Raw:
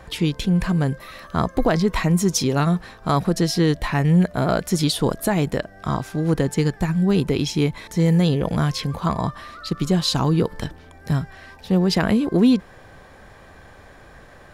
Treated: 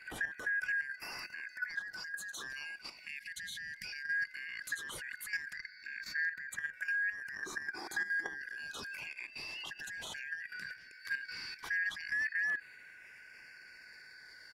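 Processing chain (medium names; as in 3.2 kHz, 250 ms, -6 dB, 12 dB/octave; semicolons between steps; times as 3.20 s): four frequency bands reordered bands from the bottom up 3142; 3.07–3.85 s: time-frequency box 250–1600 Hz -27 dB; compression 8:1, threshold -24 dBFS, peak gain reduction 12.5 dB; peak limiter -25.5 dBFS, peak gain reduction 12 dB; LFO notch saw down 0.16 Hz 410–5700 Hz; 5.55–6.53 s: static phaser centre 3 kHz, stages 6; 7.66–8.40 s: small resonant body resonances 360/800/3300 Hz, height 15 dB, ringing for 25 ms; level held to a coarse grid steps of 11 dB; echo from a far wall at 300 m, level -24 dB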